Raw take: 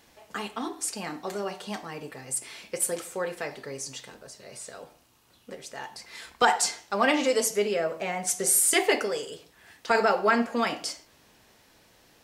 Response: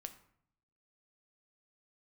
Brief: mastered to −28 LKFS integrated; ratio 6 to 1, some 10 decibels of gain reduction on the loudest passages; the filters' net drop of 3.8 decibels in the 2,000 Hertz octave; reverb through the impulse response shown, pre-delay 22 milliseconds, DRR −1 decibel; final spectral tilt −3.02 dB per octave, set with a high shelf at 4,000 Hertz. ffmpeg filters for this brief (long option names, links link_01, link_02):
-filter_complex "[0:a]equalizer=frequency=2000:width_type=o:gain=-6,highshelf=frequency=4000:gain=4.5,acompressor=threshold=-26dB:ratio=6,asplit=2[link_01][link_02];[1:a]atrim=start_sample=2205,adelay=22[link_03];[link_02][link_03]afir=irnorm=-1:irlink=0,volume=5.5dB[link_04];[link_01][link_04]amix=inputs=2:normalize=0,volume=0.5dB"